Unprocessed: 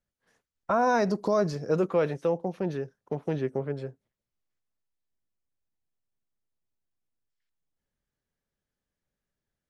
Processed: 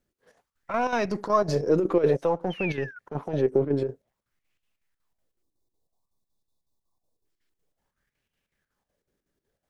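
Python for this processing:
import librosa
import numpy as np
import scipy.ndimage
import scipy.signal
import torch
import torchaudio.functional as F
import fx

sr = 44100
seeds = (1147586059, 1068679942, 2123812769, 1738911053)

p1 = np.where(x < 0.0, 10.0 ** (-3.0 / 20.0) * x, x)
p2 = fx.over_compress(p1, sr, threshold_db=-34.0, ratio=-1.0)
p3 = p1 + (p2 * librosa.db_to_amplitude(0.0))
p4 = fx.spec_paint(p3, sr, seeds[0], shape='fall', start_s=2.5, length_s=0.49, low_hz=1400.0, high_hz=3200.0, level_db=-42.0)
p5 = fx.chopper(p4, sr, hz=5.4, depth_pct=60, duty_pct=70)
p6 = fx.spec_erase(p5, sr, start_s=5.43, length_s=1.82, low_hz=1200.0, high_hz=3400.0)
p7 = fx.bell_lfo(p6, sr, hz=0.54, low_hz=320.0, high_hz=2800.0, db=13)
y = p7 * librosa.db_to_amplitude(-2.0)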